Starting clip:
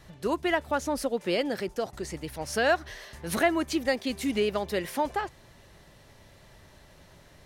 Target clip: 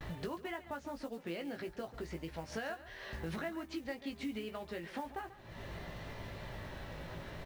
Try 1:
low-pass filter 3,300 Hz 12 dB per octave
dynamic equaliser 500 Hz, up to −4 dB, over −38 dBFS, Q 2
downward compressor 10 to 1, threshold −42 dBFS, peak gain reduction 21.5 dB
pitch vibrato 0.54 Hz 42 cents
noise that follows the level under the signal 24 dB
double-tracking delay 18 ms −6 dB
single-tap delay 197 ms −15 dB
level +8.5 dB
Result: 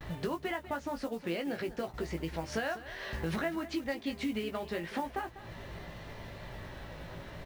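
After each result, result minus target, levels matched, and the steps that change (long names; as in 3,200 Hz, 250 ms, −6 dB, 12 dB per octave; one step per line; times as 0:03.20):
echo 57 ms late; downward compressor: peak gain reduction −6.5 dB
change: single-tap delay 140 ms −15 dB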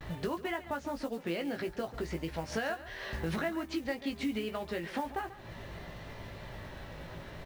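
downward compressor: peak gain reduction −6.5 dB
change: downward compressor 10 to 1, threshold −49 dBFS, peak gain reduction 28 dB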